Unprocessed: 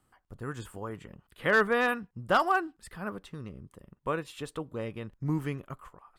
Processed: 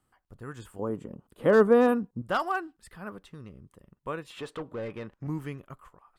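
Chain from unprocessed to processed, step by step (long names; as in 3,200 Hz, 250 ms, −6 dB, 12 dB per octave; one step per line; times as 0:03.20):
0:00.79–0:02.22: graphic EQ with 10 bands 125 Hz +4 dB, 250 Hz +12 dB, 500 Hz +9 dB, 1,000 Hz +4 dB, 2,000 Hz −7 dB, 4,000 Hz −3 dB, 8,000 Hz +3 dB
0:04.30–0:05.27: mid-hump overdrive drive 21 dB, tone 1,400 Hz, clips at −23 dBFS
level −3.5 dB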